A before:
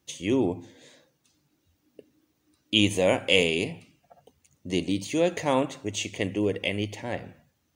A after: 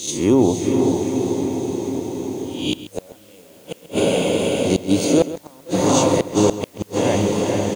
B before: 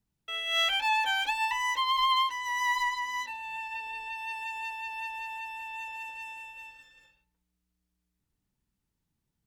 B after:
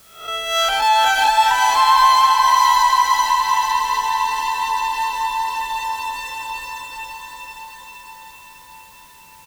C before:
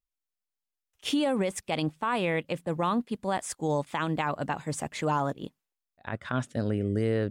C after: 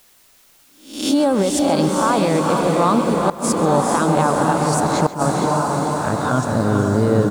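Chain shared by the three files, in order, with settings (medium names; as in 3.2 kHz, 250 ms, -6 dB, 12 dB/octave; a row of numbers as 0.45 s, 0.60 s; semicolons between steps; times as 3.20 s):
reverse spectral sustain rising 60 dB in 0.48 s; on a send: echo that smears into a reverb 458 ms, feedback 67%, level -3 dB; on the sum: inverted gate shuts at -12 dBFS, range -38 dB; high-order bell 2.4 kHz -11 dB 1.1 oct; in parallel at -1 dB: compression, threshold -35 dBFS; on the sum: echo from a far wall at 23 m, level -14 dB; word length cut 10-bit, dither triangular; peak normalisation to -3 dBFS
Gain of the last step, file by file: +7.5 dB, +11.0 dB, +7.5 dB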